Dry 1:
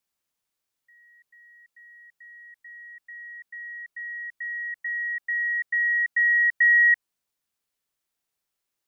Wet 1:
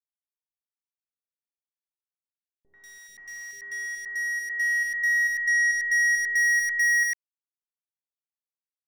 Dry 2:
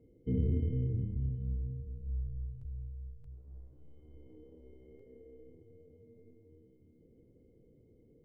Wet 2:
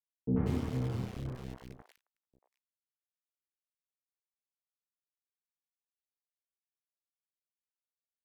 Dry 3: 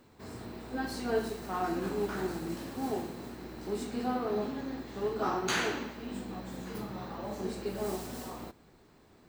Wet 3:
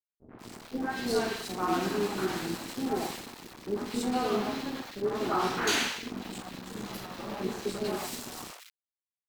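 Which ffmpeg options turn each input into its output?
-filter_complex "[0:a]highpass=140,aeval=exprs='sgn(val(0))*max(abs(val(0))-0.00668,0)':c=same,highshelf=f=2.2k:g=10.5,acontrast=62,volume=19.5dB,asoftclip=hard,volume=-19.5dB,acrusher=bits=8:dc=4:mix=0:aa=0.000001,aemphasis=mode=reproduction:type=cd,acrossover=split=560|1800[a][b][c];[b]adelay=90[d];[c]adelay=190[e];[a][d][e]amix=inputs=3:normalize=0"

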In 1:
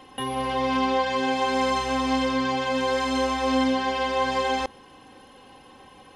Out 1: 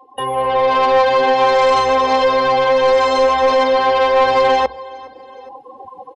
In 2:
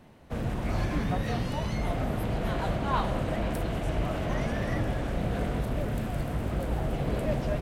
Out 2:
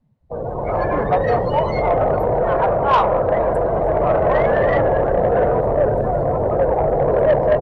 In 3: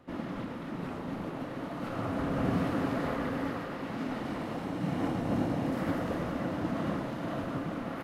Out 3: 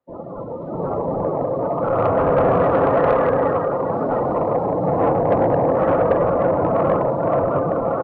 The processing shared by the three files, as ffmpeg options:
-filter_complex "[0:a]acrossover=split=240[a][b];[a]asoftclip=type=hard:threshold=-35.5dB[c];[b]equalizer=f=3.1k:t=o:w=2.7:g=-7.5[d];[c][d]amix=inputs=2:normalize=0,bandreject=f=60:t=h:w=6,bandreject=f=120:t=h:w=6,afftdn=nr=31:nf=-41,equalizer=f=125:t=o:w=1:g=4,equalizer=f=250:t=o:w=1:g=-9,equalizer=f=500:t=o:w=1:g=12,equalizer=f=1k:t=o:w=1:g=8,equalizer=f=2k:t=o:w=1:g=7,equalizer=f=4k:t=o:w=1:g=11,equalizer=f=8k:t=o:w=1:g=6,asplit=2[e][f];[f]aecho=0:1:415|830:0.0631|0.024[g];[e][g]amix=inputs=2:normalize=0,dynaudnorm=f=120:g=11:m=11dB,asoftclip=type=tanh:threshold=-3.5dB,acontrast=69,volume=-5dB"

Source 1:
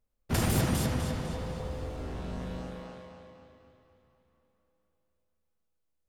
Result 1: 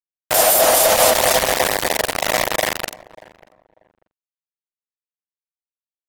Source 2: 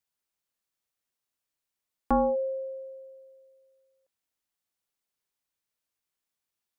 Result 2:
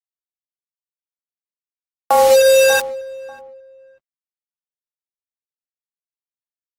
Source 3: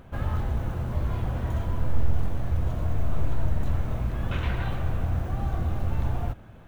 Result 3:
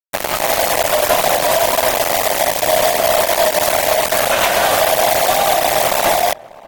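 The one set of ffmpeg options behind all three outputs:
-filter_complex "[0:a]highpass=f=630:t=q:w=5.6,aemphasis=mode=production:type=bsi,dynaudnorm=f=270:g=3:m=6dB,asplit=2[a][b];[b]asoftclip=type=tanh:threshold=-19dB,volume=-9.5dB[c];[a][c]amix=inputs=2:normalize=0,acrusher=bits=3:mix=0:aa=0.000001,asplit=2[d][e];[e]adelay=591,lowpass=f=1.1k:p=1,volume=-19.5dB,asplit=2[f][g];[g]adelay=591,lowpass=f=1.1k:p=1,volume=0.24[h];[f][h]amix=inputs=2:normalize=0[i];[d][i]amix=inputs=2:normalize=0,alimiter=level_in=13.5dB:limit=-1dB:release=50:level=0:latency=1,volume=-5dB" -ar 48000 -c:a aac -b:a 48k

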